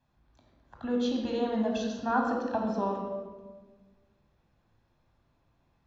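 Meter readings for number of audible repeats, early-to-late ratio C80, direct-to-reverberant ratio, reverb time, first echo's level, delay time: none, 5.0 dB, 0.0 dB, 1.4 s, none, none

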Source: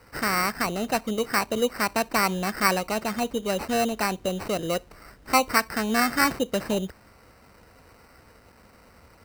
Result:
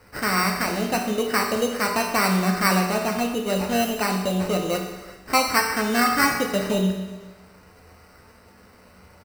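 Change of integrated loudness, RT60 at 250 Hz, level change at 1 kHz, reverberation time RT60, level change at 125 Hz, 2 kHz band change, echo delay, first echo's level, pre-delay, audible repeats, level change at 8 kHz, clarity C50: +3.0 dB, 1.2 s, +2.5 dB, 1.2 s, +7.5 dB, +2.5 dB, 0.379 s, -22.5 dB, 5 ms, 1, +2.5 dB, 4.5 dB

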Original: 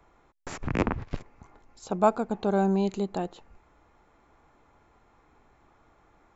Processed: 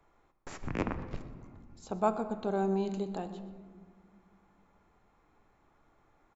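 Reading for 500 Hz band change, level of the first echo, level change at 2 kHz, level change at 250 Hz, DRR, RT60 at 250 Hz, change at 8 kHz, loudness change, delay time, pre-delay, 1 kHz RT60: -5.5 dB, -17.0 dB, -6.5 dB, -6.5 dB, 9.5 dB, 3.1 s, n/a, -6.5 dB, 0.124 s, 3 ms, 1.7 s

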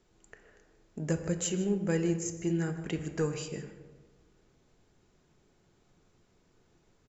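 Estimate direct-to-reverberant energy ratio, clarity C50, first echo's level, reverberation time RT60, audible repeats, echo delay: 6.5 dB, 9.0 dB, -16.0 dB, 1.4 s, 1, 0.155 s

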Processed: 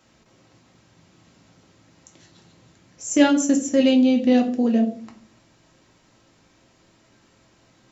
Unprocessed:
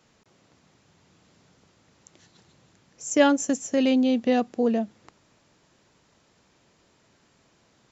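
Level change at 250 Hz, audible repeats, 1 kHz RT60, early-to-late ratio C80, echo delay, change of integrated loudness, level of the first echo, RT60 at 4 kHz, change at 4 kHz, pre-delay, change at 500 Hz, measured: +5.5 dB, none, 0.40 s, 16.5 dB, none, +4.5 dB, none, 0.35 s, +4.0 dB, 3 ms, +1.5 dB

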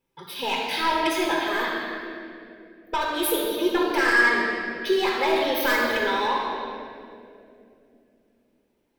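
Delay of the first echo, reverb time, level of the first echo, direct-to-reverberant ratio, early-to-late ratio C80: none, 2.7 s, none, -3.0 dB, 1.0 dB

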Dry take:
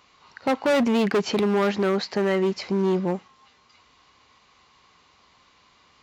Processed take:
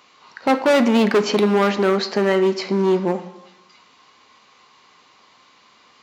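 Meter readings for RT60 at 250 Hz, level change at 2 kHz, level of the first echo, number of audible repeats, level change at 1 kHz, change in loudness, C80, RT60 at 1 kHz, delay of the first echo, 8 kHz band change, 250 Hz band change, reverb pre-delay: 0.95 s, +5.5 dB, none, none, +6.0 dB, +5.0 dB, 15.0 dB, 0.80 s, none, +5.5 dB, +4.5 dB, 5 ms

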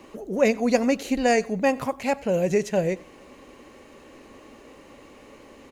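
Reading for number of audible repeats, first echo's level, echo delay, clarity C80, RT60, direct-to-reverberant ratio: 2, -23.0 dB, 93 ms, none, none, none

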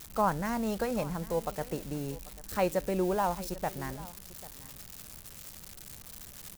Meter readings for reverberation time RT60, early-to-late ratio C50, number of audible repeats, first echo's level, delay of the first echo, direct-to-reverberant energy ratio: none, none, 1, -18.5 dB, 0.792 s, none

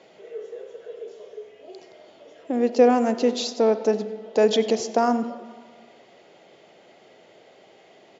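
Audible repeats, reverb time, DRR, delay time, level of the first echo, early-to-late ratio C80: 1, 1.7 s, 11.5 dB, 95 ms, -21.0 dB, 13.0 dB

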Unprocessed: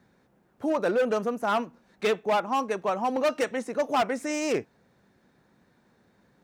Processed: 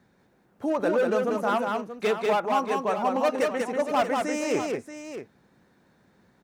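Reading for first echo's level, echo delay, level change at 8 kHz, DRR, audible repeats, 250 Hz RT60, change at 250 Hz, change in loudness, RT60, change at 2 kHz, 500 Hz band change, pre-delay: -3.5 dB, 0.19 s, 0.0 dB, none, 2, none, +1.5 dB, +1.5 dB, none, +1.0 dB, +2.0 dB, none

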